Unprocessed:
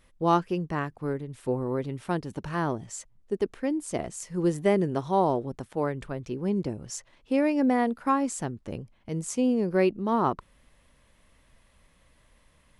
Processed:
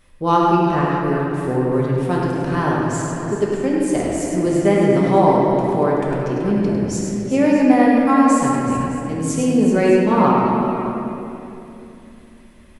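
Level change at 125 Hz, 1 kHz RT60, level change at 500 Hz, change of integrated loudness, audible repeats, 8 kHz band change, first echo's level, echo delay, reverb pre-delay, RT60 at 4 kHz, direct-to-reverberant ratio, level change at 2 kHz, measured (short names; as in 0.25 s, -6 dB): +11.5 dB, 2.6 s, +10.5 dB, +10.5 dB, 3, +8.5 dB, -6.5 dB, 0.102 s, 4 ms, 2.0 s, -5.0 dB, +11.0 dB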